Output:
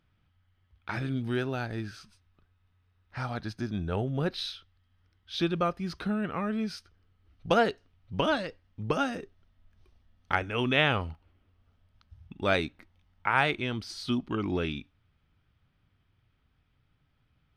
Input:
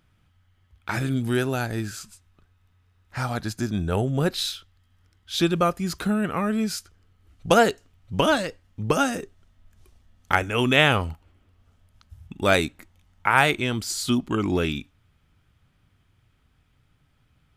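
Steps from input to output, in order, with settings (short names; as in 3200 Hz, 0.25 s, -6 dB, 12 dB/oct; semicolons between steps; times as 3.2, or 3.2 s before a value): polynomial smoothing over 15 samples; gain -6.5 dB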